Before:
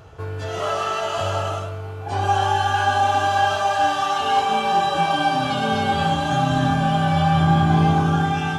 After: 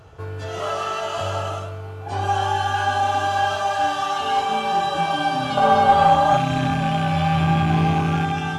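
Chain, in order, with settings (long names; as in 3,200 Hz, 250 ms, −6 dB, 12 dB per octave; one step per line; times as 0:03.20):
loose part that buzzes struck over −20 dBFS, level −21 dBFS
0:05.57–0:06.37: flat-topped bell 800 Hz +10.5 dB
in parallel at −7 dB: asymmetric clip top −15 dBFS
on the sum: level −5 dB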